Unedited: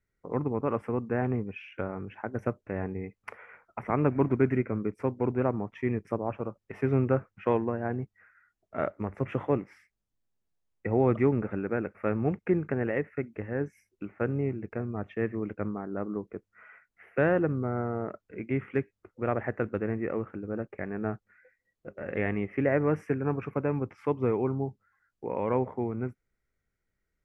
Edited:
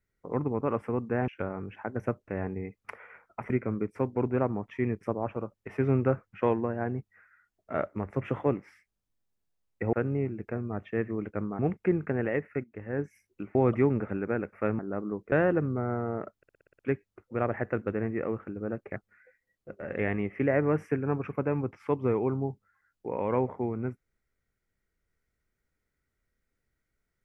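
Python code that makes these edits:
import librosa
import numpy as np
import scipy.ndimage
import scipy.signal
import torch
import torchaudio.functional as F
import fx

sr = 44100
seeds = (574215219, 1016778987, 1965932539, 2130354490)

y = fx.edit(x, sr, fx.cut(start_s=1.28, length_s=0.39),
    fx.cut(start_s=3.89, length_s=0.65),
    fx.swap(start_s=10.97, length_s=1.24, other_s=14.17, other_length_s=1.66),
    fx.fade_in_from(start_s=13.26, length_s=0.36, floor_db=-13.0),
    fx.cut(start_s=16.36, length_s=0.83),
    fx.stutter_over(start_s=18.24, slice_s=0.06, count=8),
    fx.cut(start_s=20.83, length_s=0.31), tone=tone)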